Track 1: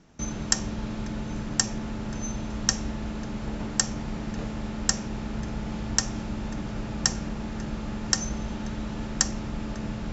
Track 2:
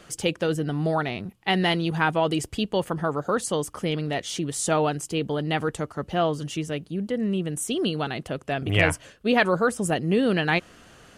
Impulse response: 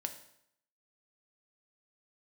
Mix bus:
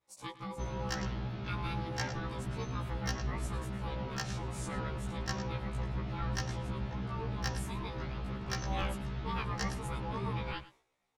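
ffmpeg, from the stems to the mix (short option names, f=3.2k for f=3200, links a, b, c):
-filter_complex "[0:a]lowpass=f=4.4k:w=0.5412,lowpass=f=4.4k:w=1.3066,equalizer=f=430:t=o:w=0.25:g=-3.5,adelay=400,volume=-4dB,asplit=2[a][b];[b]volume=-11dB[c];[1:a]agate=range=-33dB:threshold=-41dB:ratio=3:detection=peak,aeval=exprs='val(0)*sin(2*PI*670*n/s)':c=same,volume=-13.5dB,asplit=2[d][e];[e]volume=-16.5dB[f];[c][f]amix=inputs=2:normalize=0,aecho=0:1:107:1[g];[a][d][g]amix=inputs=3:normalize=0,equalizer=f=100:w=2.4:g=9,asoftclip=type=hard:threshold=-20dB,afftfilt=real='re*1.73*eq(mod(b,3),0)':imag='im*1.73*eq(mod(b,3),0)':win_size=2048:overlap=0.75"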